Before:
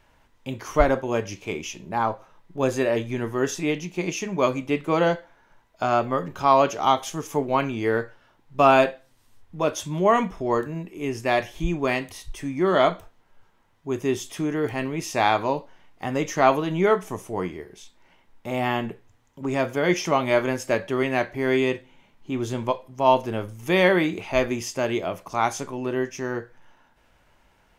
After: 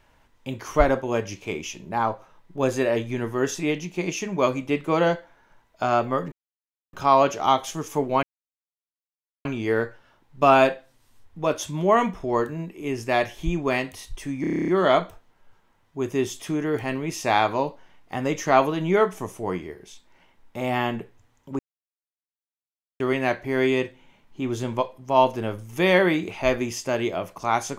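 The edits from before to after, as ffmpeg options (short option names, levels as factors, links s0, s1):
-filter_complex "[0:a]asplit=14[s0][s1][s2][s3][s4][s5][s6][s7][s8][s9][s10][s11][s12][s13];[s0]atrim=end=6.32,asetpts=PTS-STARTPTS,afade=t=out:st=6.316:d=0.004:c=hsin,apad=pad_dur=0.61[s14];[s1]atrim=start=6.32:end=7.62,asetpts=PTS-STARTPTS,afade=t=in:d=0.004:c=hsin,afade=t=out:st=1.296:d=0.004:c=hsin,apad=pad_dur=1.22[s15];[s2]atrim=start=7.62:end=12.612,asetpts=PTS-STARTPTS,afade=t=in:d=0.004:c=hsin[s16];[s3]atrim=start=12.578:end=12.612[s17];[s4]atrim=start=12.578:end=12.612[s18];[s5]atrim=start=12.578:end=12.612[s19];[s6]atrim=start=12.578:end=12.612[s20];[s7]atrim=start=12.578:end=12.612[s21];[s8]atrim=start=12.578:end=12.612[s22];[s9]atrim=start=12.578:end=12.612[s23];[s10]atrim=start=12.578:end=12.612[s24];[s11]atrim=start=12.578:end=19.49,asetpts=PTS-STARTPTS,afade=t=out:st=6.908:d=0.004:c=hsin[s25];[s12]atrim=start=19.49:end=20.9,asetpts=PTS-STARTPTS,volume=0[s26];[s13]atrim=start=20.9,asetpts=PTS-STARTPTS,afade=t=in:d=0.004:c=hsin[s27];[s14][s15][s16]concat=n=3:v=0:a=1[s28];[s28][s17]acrossfade=d=0.004:c1=hsin:c2=hsin[s29];[s29][s18]acrossfade=d=0.004:c1=hsin:c2=hsin[s30];[s30][s19]acrossfade=d=0.004:c1=hsin:c2=hsin[s31];[s31][s20]acrossfade=d=0.004:c1=hsin:c2=hsin[s32];[s32][s21]acrossfade=d=0.004:c1=hsin:c2=hsin[s33];[s33][s22]acrossfade=d=0.004:c1=hsin:c2=hsin[s34];[s34][s23]acrossfade=d=0.004:c1=hsin:c2=hsin[s35];[s35][s24]acrossfade=d=0.004:c1=hsin:c2=hsin[s36];[s25][s26][s27]concat=n=3:v=0:a=1[s37];[s36][s37]acrossfade=d=0.004:c1=hsin:c2=hsin"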